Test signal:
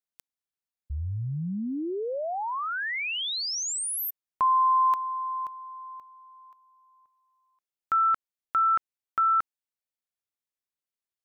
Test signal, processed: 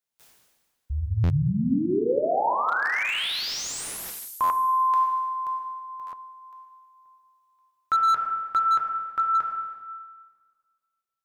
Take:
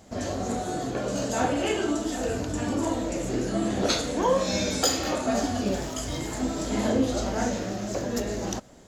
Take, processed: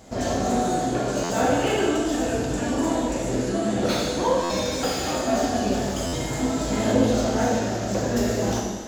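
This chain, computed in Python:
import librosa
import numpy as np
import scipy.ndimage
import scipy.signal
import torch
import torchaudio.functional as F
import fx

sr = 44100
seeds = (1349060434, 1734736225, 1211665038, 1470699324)

y = fx.rider(x, sr, range_db=4, speed_s=2.0)
y = fx.rev_plate(y, sr, seeds[0], rt60_s=1.6, hf_ratio=0.9, predelay_ms=0, drr_db=-1.0)
y = fx.buffer_glitch(y, sr, at_s=(1.23, 4.43, 6.06), block=512, repeats=5)
y = fx.slew_limit(y, sr, full_power_hz=170.0)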